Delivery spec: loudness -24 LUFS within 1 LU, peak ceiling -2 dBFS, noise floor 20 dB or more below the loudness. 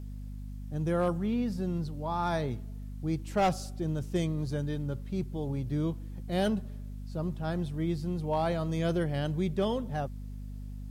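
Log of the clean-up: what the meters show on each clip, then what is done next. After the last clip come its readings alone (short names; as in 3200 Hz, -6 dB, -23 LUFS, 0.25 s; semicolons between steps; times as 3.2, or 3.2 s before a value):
clipped 0.3%; flat tops at -21.0 dBFS; hum 50 Hz; harmonics up to 250 Hz; hum level -38 dBFS; loudness -32.0 LUFS; peak -21.0 dBFS; loudness target -24.0 LUFS
-> clip repair -21 dBFS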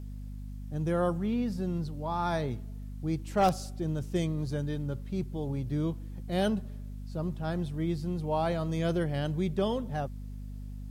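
clipped 0.0%; hum 50 Hz; harmonics up to 250 Hz; hum level -38 dBFS
-> notches 50/100/150/200/250 Hz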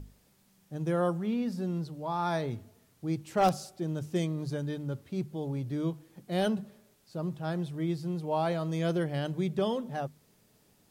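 hum none; loudness -32.5 LUFS; peak -13.0 dBFS; loudness target -24.0 LUFS
-> gain +8.5 dB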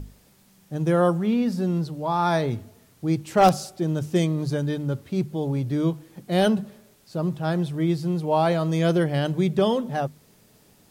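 loudness -24.0 LUFS; peak -4.5 dBFS; noise floor -58 dBFS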